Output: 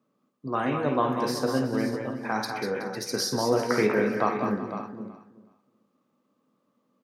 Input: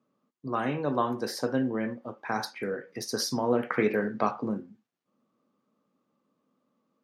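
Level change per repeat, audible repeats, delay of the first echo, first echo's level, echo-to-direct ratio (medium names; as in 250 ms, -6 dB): no regular repeats, 10, 52 ms, -10.5 dB, -3.0 dB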